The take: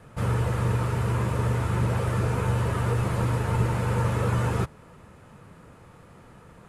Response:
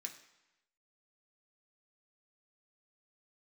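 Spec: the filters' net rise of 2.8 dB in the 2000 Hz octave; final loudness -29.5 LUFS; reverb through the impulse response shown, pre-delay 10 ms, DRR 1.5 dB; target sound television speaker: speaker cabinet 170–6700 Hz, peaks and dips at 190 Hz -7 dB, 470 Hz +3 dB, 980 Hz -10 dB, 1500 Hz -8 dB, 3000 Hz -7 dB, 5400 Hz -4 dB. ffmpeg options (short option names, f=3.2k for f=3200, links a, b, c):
-filter_complex "[0:a]equalizer=f=2k:t=o:g=9,asplit=2[a][b];[1:a]atrim=start_sample=2205,adelay=10[c];[b][c]afir=irnorm=-1:irlink=0,volume=2.5dB[d];[a][d]amix=inputs=2:normalize=0,highpass=f=170:w=0.5412,highpass=f=170:w=1.3066,equalizer=f=190:t=q:w=4:g=-7,equalizer=f=470:t=q:w=4:g=3,equalizer=f=980:t=q:w=4:g=-10,equalizer=f=1.5k:t=q:w=4:g=-8,equalizer=f=3k:t=q:w=4:g=-7,equalizer=f=5.4k:t=q:w=4:g=-4,lowpass=f=6.7k:w=0.5412,lowpass=f=6.7k:w=1.3066,volume=-0.5dB"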